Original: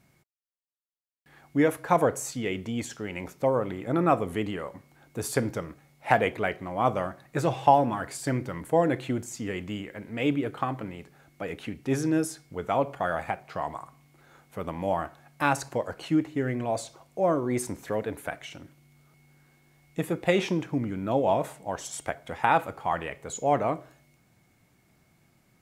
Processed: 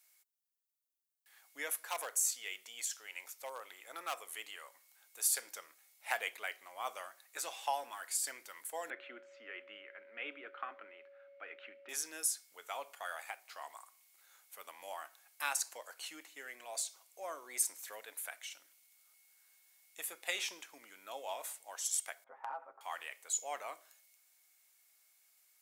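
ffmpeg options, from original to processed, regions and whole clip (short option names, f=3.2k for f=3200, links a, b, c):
-filter_complex "[0:a]asettb=1/sr,asplit=3[a][b][c];[a]atrim=end=1.894[d];[b]atrim=start=1.89:end=5.47,asetpts=PTS-STARTPTS,afade=t=in:d=0.004:c=qsin,afade=t=out:st=3.576:d=0.004:c=qsin,highpass=43,equalizer=f=220:t=o:w=1.5:g=-6,asoftclip=type=hard:threshold=-16.5dB[e];[c]atrim=start=5.466[f];[d][e]acrossfade=d=0.004:c1=hsin:c2=qsin[g];[g][f]acrossfade=d=0.004:c1=qsin:c2=hsin,asettb=1/sr,asplit=3[h][i][j];[h]atrim=end=8.904[k];[i]atrim=start=8.9:end=11.89,asetpts=PTS-STARTPTS,afade=t=in:d=0.004:c=qsin,afade=t=out:st=2.986:d=0.004:c=qsin,highpass=f=220:w=0.5412,highpass=f=220:w=1.3066,equalizer=f=230:t=q:w=4:g=8,equalizer=f=350:t=q:w=4:g=7,equalizer=f=900:t=q:w=4:g=-4,equalizer=f=1.4k:t=q:w=4:g=7,lowpass=f=2.6k:w=0.5412,lowpass=f=2.6k:w=1.3066,aeval=exprs='val(0)+0.0178*sin(2*PI*560*n/s)':c=same[l];[j]atrim=start=11.886[m];[k][l]acrossfade=d=0.004:c1=hsin:c2=qsin[n];[n][m]acrossfade=d=0.004:c1=qsin:c2=hsin,asettb=1/sr,asplit=3[o][p][q];[o]atrim=end=22.244[r];[p]atrim=start=22.24:end=22.81,asetpts=PTS-STARTPTS,afade=t=in:d=0.004:c=qsin,afade=t=out:st=0.566:d=0.004:c=qsin,lowpass=f=1.2k:w=0.5412,lowpass=f=1.2k:w=1.3066,aecho=1:1:7.5:0.75,atrim=end_sample=25137,acompressor=threshold=-23dB:ratio=4:attack=3.2:release=140:knee=1:detection=peak[s];[q]atrim=start=22.806[t];[r][s]acrossfade=d=0.004:c1=hsin:c2=qsin[u];[u][t]acrossfade=d=0.004:c1=qsin:c2=hsin,highpass=510,aderivative,volume=3dB"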